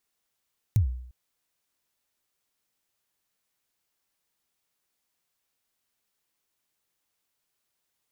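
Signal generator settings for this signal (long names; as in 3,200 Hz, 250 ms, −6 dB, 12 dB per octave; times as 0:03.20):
synth kick length 0.35 s, from 120 Hz, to 62 Hz, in 109 ms, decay 0.67 s, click on, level −15 dB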